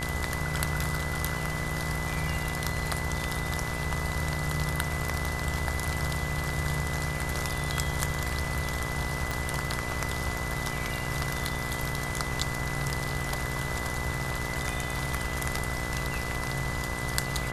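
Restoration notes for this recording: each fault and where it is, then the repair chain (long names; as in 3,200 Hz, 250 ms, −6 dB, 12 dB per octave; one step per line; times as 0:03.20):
mains buzz 60 Hz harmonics 29 −36 dBFS
whistle 2,000 Hz −36 dBFS
0:09.31: click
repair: click removal
notch filter 2,000 Hz, Q 30
hum removal 60 Hz, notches 29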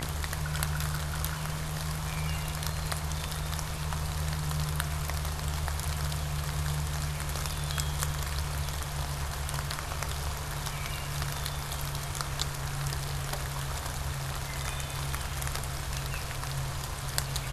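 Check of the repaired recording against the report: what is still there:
0:09.31: click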